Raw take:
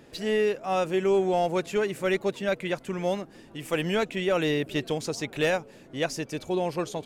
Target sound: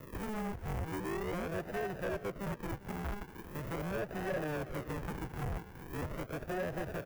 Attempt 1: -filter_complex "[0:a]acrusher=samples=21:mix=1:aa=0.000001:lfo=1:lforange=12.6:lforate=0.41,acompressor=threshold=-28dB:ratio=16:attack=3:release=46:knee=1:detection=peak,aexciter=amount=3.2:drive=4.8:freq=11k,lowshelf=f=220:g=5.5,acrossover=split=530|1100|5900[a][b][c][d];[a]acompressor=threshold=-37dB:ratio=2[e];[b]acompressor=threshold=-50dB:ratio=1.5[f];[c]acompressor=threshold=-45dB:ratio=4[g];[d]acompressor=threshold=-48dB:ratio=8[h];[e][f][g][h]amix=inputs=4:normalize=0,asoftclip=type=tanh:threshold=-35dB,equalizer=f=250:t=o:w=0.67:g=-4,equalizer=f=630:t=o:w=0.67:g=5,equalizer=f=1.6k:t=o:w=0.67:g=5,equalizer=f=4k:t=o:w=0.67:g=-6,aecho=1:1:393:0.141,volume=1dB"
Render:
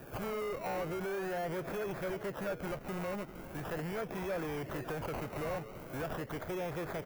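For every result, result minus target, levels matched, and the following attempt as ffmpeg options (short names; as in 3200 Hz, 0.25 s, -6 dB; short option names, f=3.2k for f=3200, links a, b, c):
decimation with a swept rate: distortion -20 dB; compressor: peak gain reduction +9.5 dB
-filter_complex "[0:a]acrusher=samples=56:mix=1:aa=0.000001:lfo=1:lforange=33.6:lforate=0.41,acompressor=threshold=-28dB:ratio=16:attack=3:release=46:knee=1:detection=peak,aexciter=amount=3.2:drive=4.8:freq=11k,lowshelf=f=220:g=5.5,acrossover=split=530|1100|5900[a][b][c][d];[a]acompressor=threshold=-37dB:ratio=2[e];[b]acompressor=threshold=-50dB:ratio=1.5[f];[c]acompressor=threshold=-45dB:ratio=4[g];[d]acompressor=threshold=-48dB:ratio=8[h];[e][f][g][h]amix=inputs=4:normalize=0,asoftclip=type=tanh:threshold=-35dB,equalizer=f=250:t=o:w=0.67:g=-4,equalizer=f=630:t=o:w=0.67:g=5,equalizer=f=1.6k:t=o:w=0.67:g=5,equalizer=f=4k:t=o:w=0.67:g=-6,aecho=1:1:393:0.141,volume=1dB"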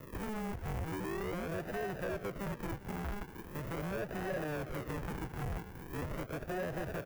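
compressor: peak gain reduction +10.5 dB
-filter_complex "[0:a]acrusher=samples=56:mix=1:aa=0.000001:lfo=1:lforange=33.6:lforate=0.41,aexciter=amount=3.2:drive=4.8:freq=11k,lowshelf=f=220:g=5.5,acrossover=split=530|1100|5900[a][b][c][d];[a]acompressor=threshold=-37dB:ratio=2[e];[b]acompressor=threshold=-50dB:ratio=1.5[f];[c]acompressor=threshold=-45dB:ratio=4[g];[d]acompressor=threshold=-48dB:ratio=8[h];[e][f][g][h]amix=inputs=4:normalize=0,asoftclip=type=tanh:threshold=-35dB,equalizer=f=250:t=o:w=0.67:g=-4,equalizer=f=630:t=o:w=0.67:g=5,equalizer=f=1.6k:t=o:w=0.67:g=5,equalizer=f=4k:t=o:w=0.67:g=-6,aecho=1:1:393:0.141,volume=1dB"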